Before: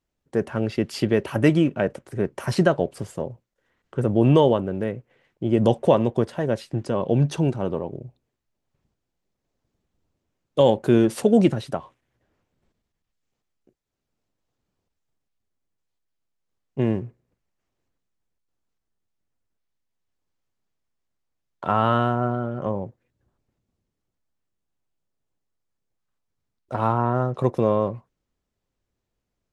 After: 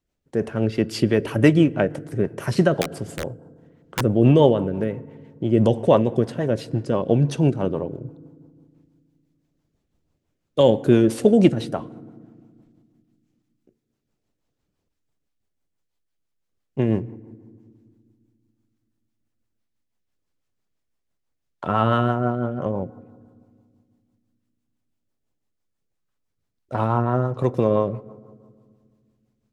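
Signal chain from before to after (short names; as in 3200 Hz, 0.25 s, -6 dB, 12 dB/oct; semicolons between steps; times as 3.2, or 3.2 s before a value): FDN reverb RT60 1.9 s, low-frequency decay 1.5×, high-frequency decay 0.45×, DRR 18 dB; 2.81–4.02 wrapped overs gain 17 dB; rotary speaker horn 6 Hz; gain +3.5 dB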